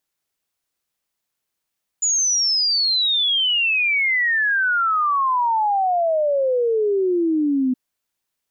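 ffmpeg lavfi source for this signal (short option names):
-f lavfi -i "aevalsrc='0.158*clip(min(t,5.72-t)/0.01,0,1)*sin(2*PI*7000*5.72/log(250/7000)*(exp(log(250/7000)*t/5.72)-1))':d=5.72:s=44100"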